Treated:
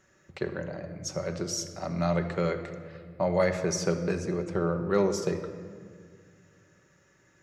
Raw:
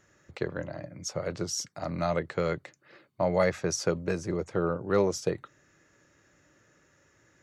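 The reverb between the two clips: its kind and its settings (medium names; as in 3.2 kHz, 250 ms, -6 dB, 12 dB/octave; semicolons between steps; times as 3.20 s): simulated room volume 3300 m³, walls mixed, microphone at 1.1 m; trim -1 dB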